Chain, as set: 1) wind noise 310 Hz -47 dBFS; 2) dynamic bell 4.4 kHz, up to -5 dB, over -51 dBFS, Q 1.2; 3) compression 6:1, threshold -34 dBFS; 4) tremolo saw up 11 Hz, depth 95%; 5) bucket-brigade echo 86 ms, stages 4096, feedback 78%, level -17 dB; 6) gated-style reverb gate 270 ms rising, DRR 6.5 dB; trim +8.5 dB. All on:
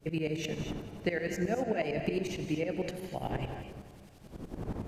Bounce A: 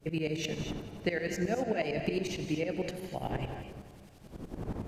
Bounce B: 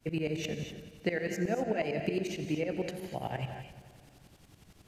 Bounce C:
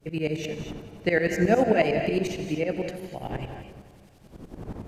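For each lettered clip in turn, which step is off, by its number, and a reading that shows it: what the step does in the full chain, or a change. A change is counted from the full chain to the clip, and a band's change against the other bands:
2, 4 kHz band +2.5 dB; 1, momentary loudness spread change -6 LU; 3, mean gain reduction 3.0 dB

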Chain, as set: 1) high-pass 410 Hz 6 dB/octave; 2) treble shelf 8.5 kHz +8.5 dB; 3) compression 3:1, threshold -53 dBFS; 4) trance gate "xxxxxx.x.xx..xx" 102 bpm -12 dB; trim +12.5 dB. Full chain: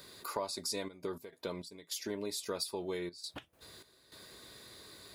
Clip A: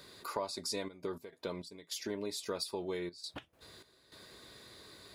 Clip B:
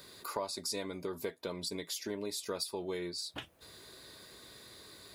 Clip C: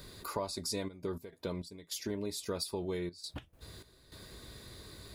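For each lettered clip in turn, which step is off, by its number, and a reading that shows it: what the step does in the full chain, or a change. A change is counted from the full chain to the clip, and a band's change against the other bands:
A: 2, 8 kHz band -2.5 dB; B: 4, momentary loudness spread change -3 LU; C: 1, 125 Hz band +8.5 dB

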